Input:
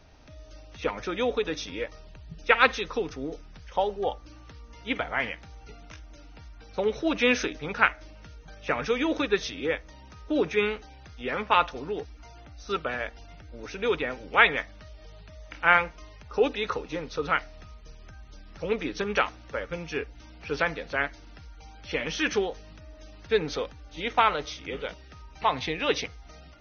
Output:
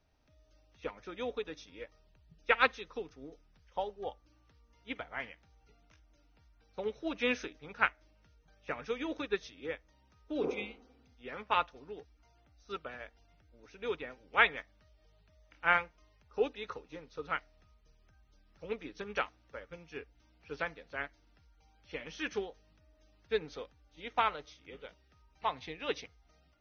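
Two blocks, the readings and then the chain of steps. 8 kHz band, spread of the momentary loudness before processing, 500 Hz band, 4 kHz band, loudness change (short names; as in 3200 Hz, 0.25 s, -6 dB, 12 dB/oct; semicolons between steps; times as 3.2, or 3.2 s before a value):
n/a, 18 LU, -10.0 dB, -10.0 dB, -8.5 dB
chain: spectral repair 10.46–11.13, 220–2000 Hz both; upward expander 1.5:1, over -40 dBFS; gain -6 dB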